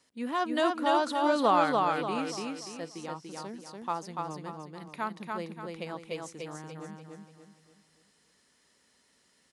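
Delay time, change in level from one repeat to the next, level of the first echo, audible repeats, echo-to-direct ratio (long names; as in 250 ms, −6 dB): 290 ms, −8.0 dB, −3.0 dB, 4, −2.5 dB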